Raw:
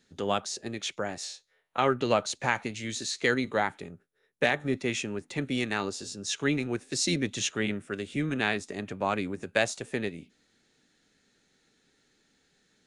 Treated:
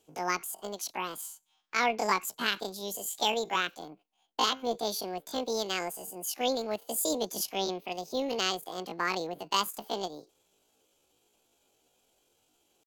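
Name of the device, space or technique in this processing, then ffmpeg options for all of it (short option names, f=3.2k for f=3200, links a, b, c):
chipmunk voice: -af "asetrate=78577,aresample=44100,atempo=0.561231,volume=-2dB"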